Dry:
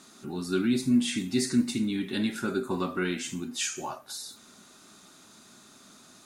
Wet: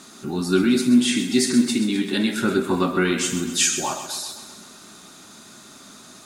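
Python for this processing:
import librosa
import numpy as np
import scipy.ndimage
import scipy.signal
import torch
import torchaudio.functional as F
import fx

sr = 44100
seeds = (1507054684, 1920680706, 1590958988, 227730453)

p1 = fx.highpass(x, sr, hz=210.0, slope=12, at=(0.64, 2.37))
p2 = fx.high_shelf(p1, sr, hz=5300.0, db=6.0, at=(3.18, 4.07))
p3 = p2 + fx.echo_feedback(p2, sr, ms=130, feedback_pct=58, wet_db=-10.5, dry=0)
y = F.gain(torch.from_numpy(p3), 8.5).numpy()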